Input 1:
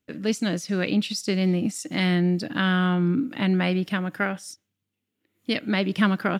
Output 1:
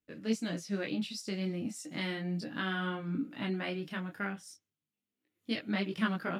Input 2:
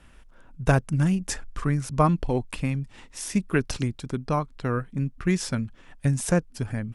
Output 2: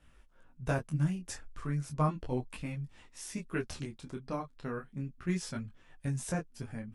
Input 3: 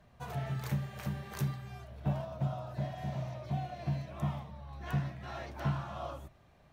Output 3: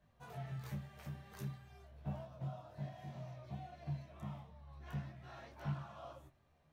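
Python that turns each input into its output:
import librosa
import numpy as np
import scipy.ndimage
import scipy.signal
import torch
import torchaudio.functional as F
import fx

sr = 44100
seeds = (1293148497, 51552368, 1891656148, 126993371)

y = fx.doubler(x, sr, ms=13.0, db=-14)
y = fx.detune_double(y, sr, cents=12)
y = y * librosa.db_to_amplitude(-7.0)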